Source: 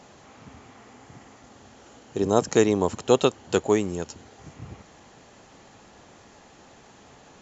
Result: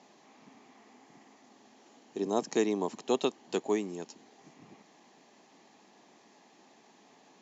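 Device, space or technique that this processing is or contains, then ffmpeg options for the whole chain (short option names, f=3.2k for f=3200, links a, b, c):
television speaker: -af "highpass=f=200:w=0.5412,highpass=f=200:w=1.3066,equalizer=f=520:t=q:w=4:g=-7,equalizer=f=1.4k:t=q:w=4:g=-10,equalizer=f=3k:t=q:w=4:g=-3,lowpass=f=6.6k:w=0.5412,lowpass=f=6.6k:w=1.3066,volume=-6.5dB"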